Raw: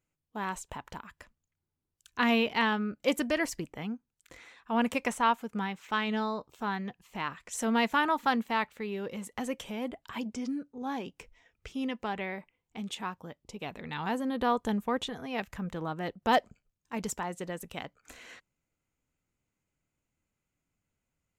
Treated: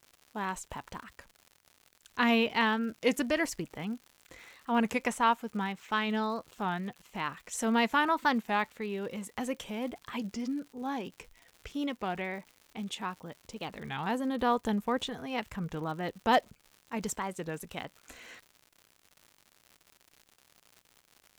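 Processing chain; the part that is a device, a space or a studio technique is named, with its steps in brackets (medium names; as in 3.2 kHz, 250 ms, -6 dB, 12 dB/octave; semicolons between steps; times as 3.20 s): warped LP (warped record 33 1/3 rpm, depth 160 cents; crackle 140 per s -43 dBFS; white noise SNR 45 dB)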